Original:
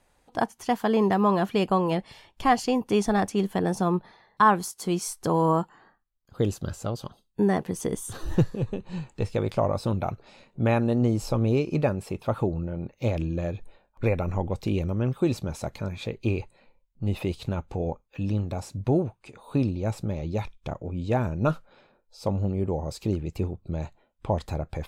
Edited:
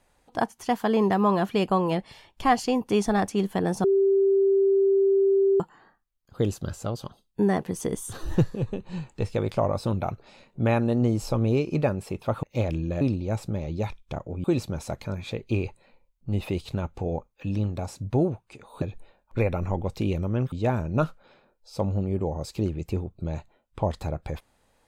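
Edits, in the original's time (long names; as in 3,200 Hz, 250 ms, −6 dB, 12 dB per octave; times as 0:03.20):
0:03.84–0:05.60: beep over 391 Hz −17 dBFS
0:12.43–0:12.90: remove
0:13.48–0:15.18: swap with 0:19.56–0:20.99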